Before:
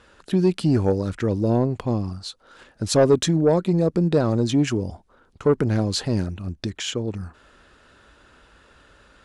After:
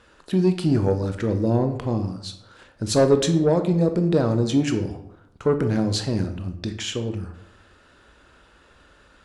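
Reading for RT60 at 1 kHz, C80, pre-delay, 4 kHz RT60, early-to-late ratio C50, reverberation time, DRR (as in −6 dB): 0.80 s, 13.0 dB, 18 ms, 0.50 s, 10.5 dB, 0.80 s, 7.0 dB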